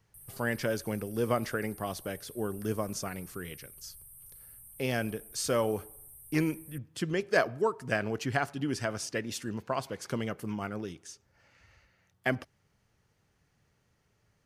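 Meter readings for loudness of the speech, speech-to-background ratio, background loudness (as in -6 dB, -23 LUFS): -33.5 LUFS, 15.5 dB, -49.0 LUFS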